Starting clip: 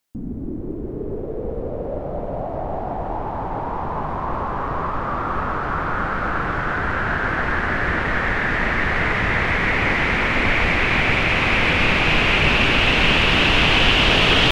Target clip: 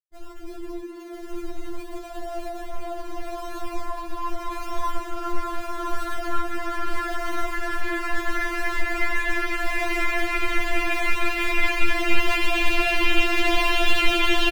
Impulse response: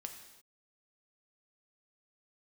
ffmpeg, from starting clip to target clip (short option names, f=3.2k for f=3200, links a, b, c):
-filter_complex "[0:a]asettb=1/sr,asplit=3[a][b][c];[a]atrim=end=0.804[d];[b]atrim=start=0.8:end=1.3,asetpts=PTS-STARTPTS,afade=t=in:d=0.004:c=qsin,afade=t=out:st=0.496:d=0.004:c=qsin,highpass=200[e];[c]atrim=start=1.296[f];[d][e]acrossfade=d=0.004:c1=hsin:c2=qsin[g];[g][f]acrossfade=d=0.004:c1=qsin:c2=hsin,asplit=2[h][i];[i]acrusher=samples=36:mix=1:aa=0.000001:lfo=1:lforange=36:lforate=0.78,volume=-6dB[j];[h][j]amix=inputs=2:normalize=0,aeval=exprs='sgn(val(0))*max(abs(val(0))-0.0211,0)':c=same,flanger=delay=3.6:depth=1.9:regen=76:speed=1.1:shape=triangular,asplit=2[k][l];[l]aecho=0:1:1010:0.531[m];[k][m]amix=inputs=2:normalize=0,afftfilt=real='re*4*eq(mod(b,16),0)':imag='im*4*eq(mod(b,16),0)':win_size=2048:overlap=0.75"